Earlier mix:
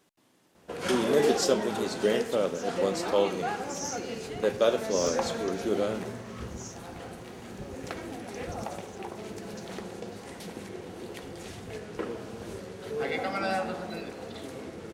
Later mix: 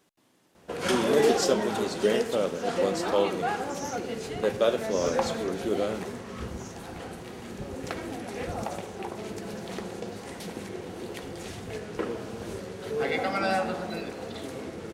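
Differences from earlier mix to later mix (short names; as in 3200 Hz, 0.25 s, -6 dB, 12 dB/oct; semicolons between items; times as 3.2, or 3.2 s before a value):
first sound +3.0 dB; second sound -5.5 dB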